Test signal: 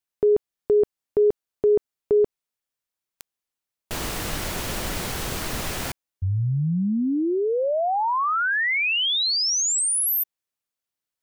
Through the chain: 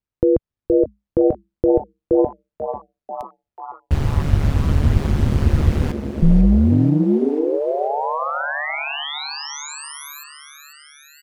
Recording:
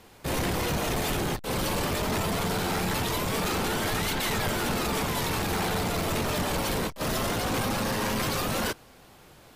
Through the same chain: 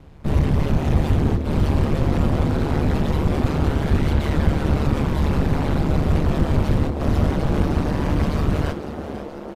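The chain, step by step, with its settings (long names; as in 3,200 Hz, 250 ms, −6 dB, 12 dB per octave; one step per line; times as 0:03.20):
RIAA equalisation playback
echo with shifted repeats 490 ms, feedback 62%, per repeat +130 Hz, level −12 dB
ring modulation 73 Hz
level +2 dB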